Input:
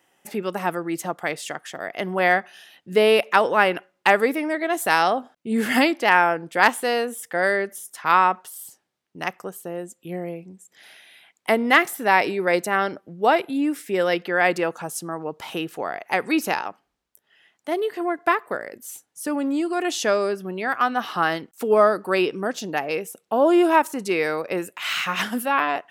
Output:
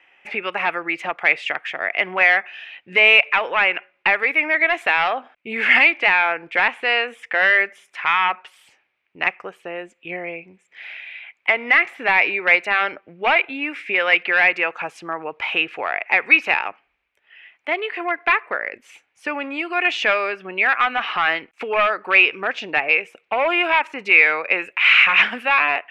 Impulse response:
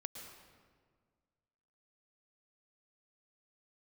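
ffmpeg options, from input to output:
-filter_complex "[0:a]equalizer=frequency=170:width=0.68:gain=-12,acrossover=split=620[link_01][link_02];[link_01]acompressor=threshold=-35dB:ratio=6[link_03];[link_02]alimiter=limit=-13dB:level=0:latency=1:release=404[link_04];[link_03][link_04]amix=inputs=2:normalize=0,asoftclip=type=hard:threshold=-20dB,lowpass=frequency=2400:width_type=q:width=6.1,volume=4.5dB"

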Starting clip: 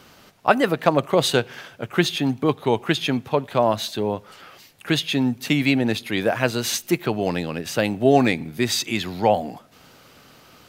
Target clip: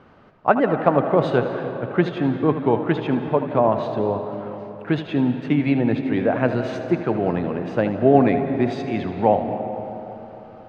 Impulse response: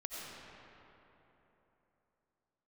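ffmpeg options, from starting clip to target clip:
-filter_complex "[0:a]lowpass=1400,asplit=2[link_01][link_02];[1:a]atrim=start_sample=2205,adelay=79[link_03];[link_02][link_03]afir=irnorm=-1:irlink=0,volume=-6.5dB[link_04];[link_01][link_04]amix=inputs=2:normalize=0,volume=1dB"

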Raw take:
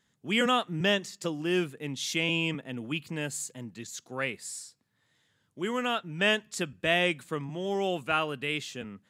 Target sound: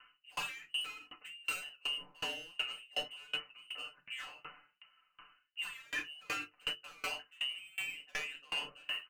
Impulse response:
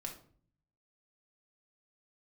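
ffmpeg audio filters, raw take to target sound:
-filter_complex "[0:a]lowpass=frequency=2600:width_type=q:width=0.5098,lowpass=frequency=2600:width_type=q:width=0.6013,lowpass=frequency=2600:width_type=q:width=0.9,lowpass=frequency=2600:width_type=q:width=2.563,afreqshift=-3100,bandreject=frequency=50:width_type=h:width=6,bandreject=frequency=100:width_type=h:width=6,bandreject=frequency=150:width_type=h:width=6,bandreject=frequency=200:width_type=h:width=6,bandreject=frequency=250:width_type=h:width=6,bandreject=frequency=300:width_type=h:width=6,bandreject=frequency=350:width_type=h:width=6,bandreject=frequency=400:width_type=h:width=6,bandreject=frequency=450:width_type=h:width=6,asplit=2[link_01][link_02];[link_02]aeval=exprs='val(0)*gte(abs(val(0)),0.0126)':channel_layout=same,volume=-11dB[link_03];[link_01][link_03]amix=inputs=2:normalize=0,alimiter=limit=-19.5dB:level=0:latency=1:release=330,asoftclip=type=tanh:threshold=-36dB,equalizer=frequency=2200:width_type=o:width=2:gain=5.5,aecho=1:1:6.8:0.99[link_04];[1:a]atrim=start_sample=2205,afade=type=out:start_time=0.15:duration=0.01,atrim=end_sample=7056[link_05];[link_04][link_05]afir=irnorm=-1:irlink=0,areverse,acompressor=threshold=-46dB:ratio=6,areverse,aeval=exprs='val(0)*pow(10,-29*if(lt(mod(2.7*n/s,1),2*abs(2.7)/1000),1-mod(2.7*n/s,1)/(2*abs(2.7)/1000),(mod(2.7*n/s,1)-2*abs(2.7)/1000)/(1-2*abs(2.7)/1000))/20)':channel_layout=same,volume=14dB"

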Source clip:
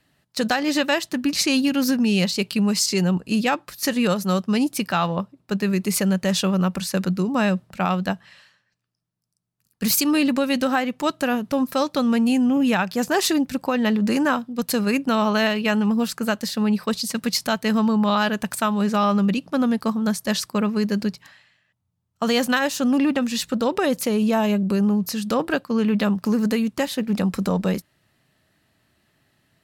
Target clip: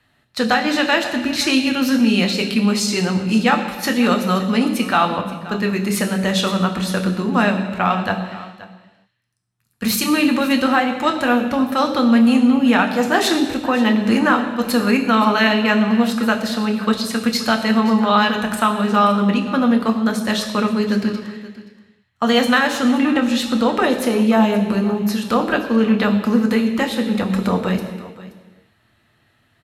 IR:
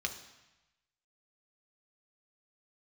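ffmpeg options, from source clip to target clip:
-filter_complex "[0:a]aecho=1:1:526:0.133[link_01];[1:a]atrim=start_sample=2205,afade=type=out:start_time=0.29:duration=0.01,atrim=end_sample=13230,asetrate=25578,aresample=44100[link_02];[link_01][link_02]afir=irnorm=-1:irlink=0,volume=-1.5dB"

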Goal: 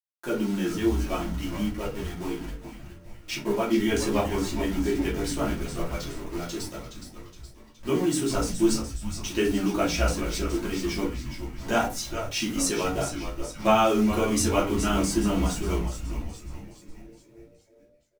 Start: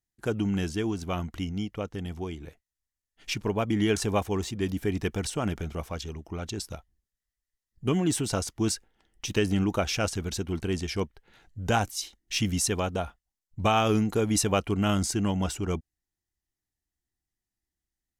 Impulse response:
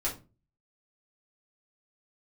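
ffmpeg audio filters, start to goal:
-filter_complex "[0:a]highpass=frequency=160:width=0.5412,highpass=frequency=160:width=1.3066,acrusher=bits=6:mix=0:aa=0.000001,flanger=delay=9.1:depth=8.5:regen=36:speed=0.66:shape=sinusoidal,asplit=7[link_01][link_02][link_03][link_04][link_05][link_06][link_07];[link_02]adelay=418,afreqshift=-130,volume=-9dB[link_08];[link_03]adelay=836,afreqshift=-260,volume=-15dB[link_09];[link_04]adelay=1254,afreqshift=-390,volume=-21dB[link_10];[link_05]adelay=1672,afreqshift=-520,volume=-27.1dB[link_11];[link_06]adelay=2090,afreqshift=-650,volume=-33.1dB[link_12];[link_07]adelay=2508,afreqshift=-780,volume=-39.1dB[link_13];[link_01][link_08][link_09][link_10][link_11][link_12][link_13]amix=inputs=7:normalize=0[link_14];[1:a]atrim=start_sample=2205[link_15];[link_14][link_15]afir=irnorm=-1:irlink=0"

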